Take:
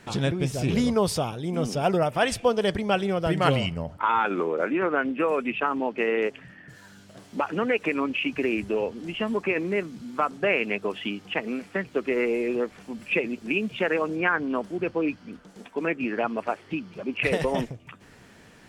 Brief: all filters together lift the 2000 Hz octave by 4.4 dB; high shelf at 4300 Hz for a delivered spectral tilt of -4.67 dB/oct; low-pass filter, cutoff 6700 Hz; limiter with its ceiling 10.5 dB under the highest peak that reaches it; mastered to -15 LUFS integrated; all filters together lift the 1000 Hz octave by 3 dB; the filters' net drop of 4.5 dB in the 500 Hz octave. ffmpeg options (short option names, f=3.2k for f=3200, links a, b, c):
-af "lowpass=6.7k,equalizer=f=500:t=o:g=-7,equalizer=f=1k:t=o:g=4.5,equalizer=f=2k:t=o:g=3,highshelf=f=4.3k:g=8,volume=12dB,alimiter=limit=-2dB:level=0:latency=1"